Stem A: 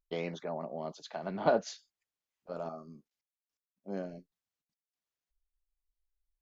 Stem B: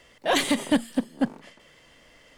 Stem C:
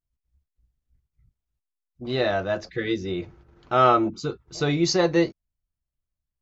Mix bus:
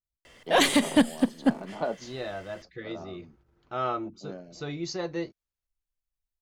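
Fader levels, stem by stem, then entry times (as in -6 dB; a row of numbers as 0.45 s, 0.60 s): -3.5 dB, +1.5 dB, -12.0 dB; 0.35 s, 0.25 s, 0.00 s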